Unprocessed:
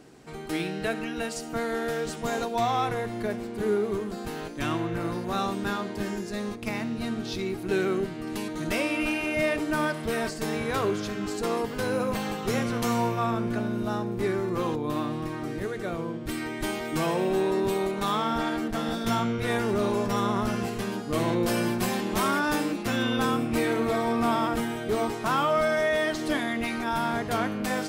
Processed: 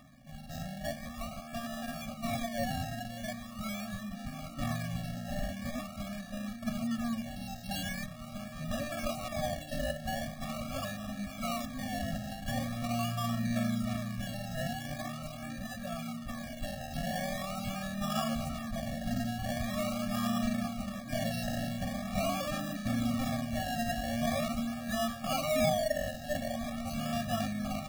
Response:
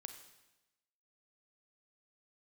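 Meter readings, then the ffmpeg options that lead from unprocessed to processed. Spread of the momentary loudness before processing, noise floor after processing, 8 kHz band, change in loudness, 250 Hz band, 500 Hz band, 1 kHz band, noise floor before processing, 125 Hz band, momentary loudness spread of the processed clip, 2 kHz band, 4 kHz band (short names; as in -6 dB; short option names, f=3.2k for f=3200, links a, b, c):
7 LU, -45 dBFS, -4.0 dB, -7.5 dB, -6.5 dB, -10.0 dB, -9.0 dB, -36 dBFS, -3.5 dB, 9 LU, -9.5 dB, -5.0 dB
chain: -af "aphaser=in_gain=1:out_gain=1:delay=4.5:decay=0.38:speed=0.22:type=triangular,acrusher=samples=29:mix=1:aa=0.000001:lfo=1:lforange=17.4:lforate=0.43,afftfilt=real='re*eq(mod(floor(b*sr/1024/270),2),0)':imag='im*eq(mod(floor(b*sr/1024/270),2),0)':win_size=1024:overlap=0.75,volume=-5dB"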